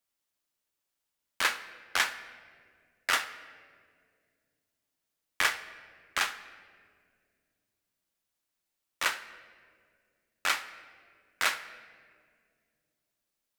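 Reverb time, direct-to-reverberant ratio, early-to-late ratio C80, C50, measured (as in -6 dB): 2.1 s, 10.5 dB, 14.5 dB, 12.5 dB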